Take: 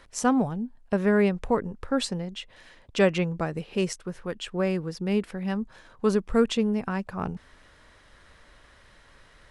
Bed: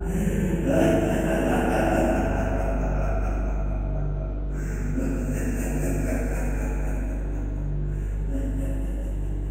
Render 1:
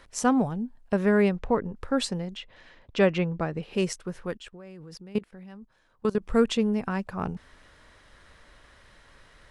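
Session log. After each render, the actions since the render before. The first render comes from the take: 1.36–1.76 s: distance through air 110 m; 2.37–3.63 s: distance through air 110 m; 4.37–6.22 s: level held to a coarse grid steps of 22 dB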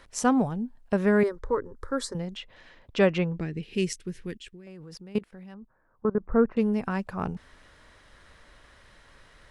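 1.23–2.15 s: static phaser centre 720 Hz, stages 6; 3.40–4.67 s: high-order bell 860 Hz -15.5 dB; 5.54–6.57 s: inverse Chebyshev low-pass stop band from 3.1 kHz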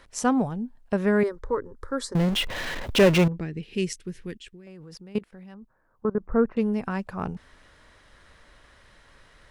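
2.15–3.28 s: power-law waveshaper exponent 0.5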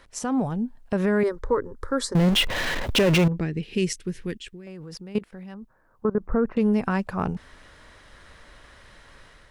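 peak limiter -18 dBFS, peak gain reduction 10 dB; level rider gain up to 5 dB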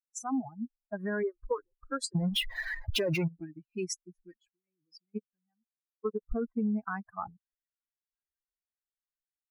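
expander on every frequency bin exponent 3; compression 6:1, threshold -27 dBFS, peak gain reduction 8.5 dB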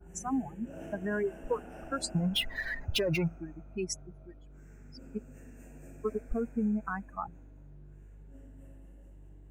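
add bed -24.5 dB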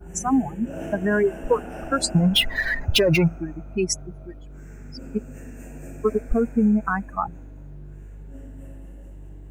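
trim +11.5 dB

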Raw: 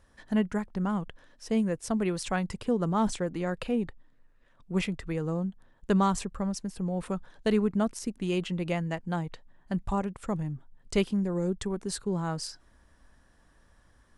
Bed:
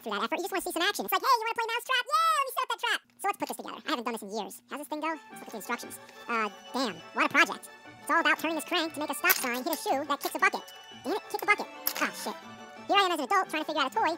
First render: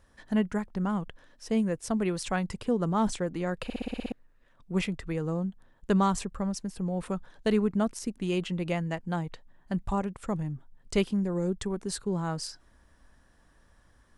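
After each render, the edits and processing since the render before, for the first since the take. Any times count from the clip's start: 3.64 s: stutter in place 0.06 s, 8 plays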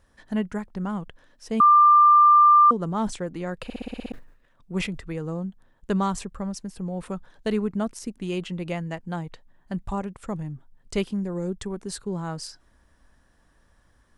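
1.60–2.71 s: bleep 1.19 kHz -11 dBFS; 4.08–4.99 s: decay stretcher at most 97 dB/s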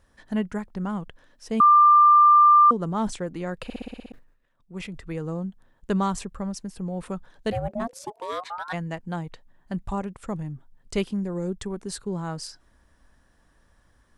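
3.75–5.14 s: dip -8.5 dB, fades 0.32 s; 7.51–8.72 s: ring modulator 310 Hz -> 1.3 kHz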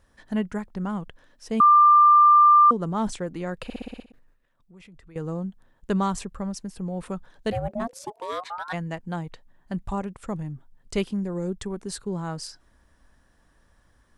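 4.02–5.16 s: compression 3:1, threshold -51 dBFS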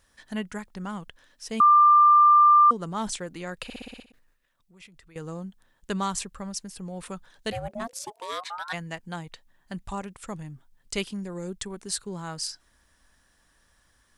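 tilt shelf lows -6.5 dB, about 1.5 kHz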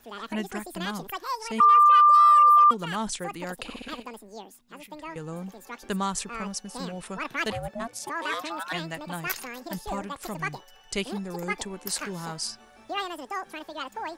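add bed -7.5 dB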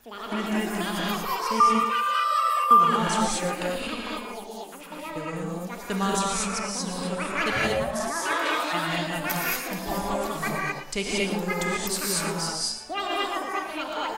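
feedback delay 115 ms, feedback 26%, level -11.5 dB; gated-style reverb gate 260 ms rising, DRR -4.5 dB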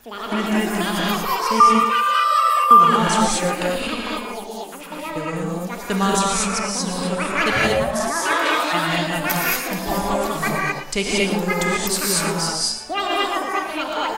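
trim +6.5 dB; peak limiter -2 dBFS, peak gain reduction 1 dB

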